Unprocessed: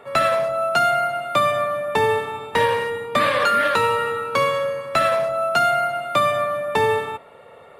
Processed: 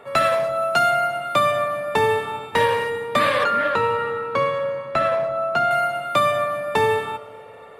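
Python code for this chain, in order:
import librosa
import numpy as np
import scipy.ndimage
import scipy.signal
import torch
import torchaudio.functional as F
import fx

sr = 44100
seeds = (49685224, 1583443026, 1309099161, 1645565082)

y = fx.lowpass(x, sr, hz=1600.0, slope=6, at=(3.44, 5.71))
y = fx.rev_plate(y, sr, seeds[0], rt60_s=4.2, hf_ratio=0.75, predelay_ms=85, drr_db=19.0)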